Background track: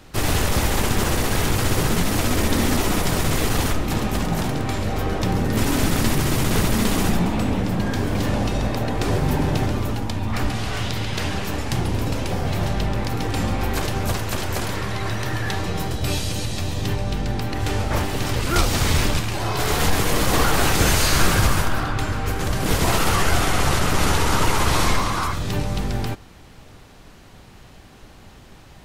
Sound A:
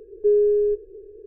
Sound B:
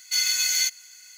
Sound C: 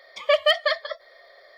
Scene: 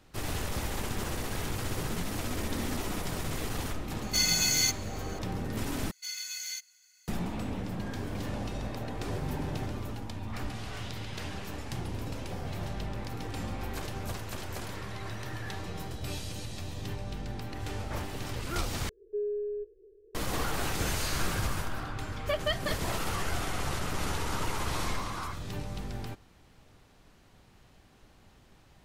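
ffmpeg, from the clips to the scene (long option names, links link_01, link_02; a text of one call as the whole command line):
ffmpeg -i bed.wav -i cue0.wav -i cue1.wav -i cue2.wav -filter_complex "[2:a]asplit=2[link_01][link_02];[0:a]volume=-13.5dB,asplit=3[link_03][link_04][link_05];[link_03]atrim=end=5.914[link_06];[link_02]atrim=end=1.17,asetpts=PTS-STARTPTS,volume=-15dB[link_07];[link_04]atrim=start=7.076:end=18.894[link_08];[1:a]atrim=end=1.26,asetpts=PTS-STARTPTS,volume=-15dB[link_09];[link_05]atrim=start=20.146[link_10];[link_01]atrim=end=1.17,asetpts=PTS-STARTPTS,volume=-3.5dB,afade=type=in:duration=0.004:curve=hsin,afade=type=out:start_time=1.166:duration=0.004:curve=hsin,adelay=4020[link_11];[3:a]atrim=end=1.57,asetpts=PTS-STARTPTS,volume=-12dB,afade=type=in:duration=0.004:curve=hsin,afade=type=out:start_time=1.566:duration=0.004:curve=hsin,adelay=22000[link_12];[link_06][link_07]acrossfade=duration=0.004:curve1=hsin:curve2=hsin[link_13];[link_13][link_08]acrossfade=duration=0.004:curve1=hsin:curve2=hsin[link_14];[link_14][link_09]acrossfade=duration=0.004:curve1=hsin:curve2=hsin[link_15];[link_15][link_10]acrossfade=duration=0.004:curve1=hsin:curve2=hsin[link_16];[link_16][link_11][link_12]amix=inputs=3:normalize=0" out.wav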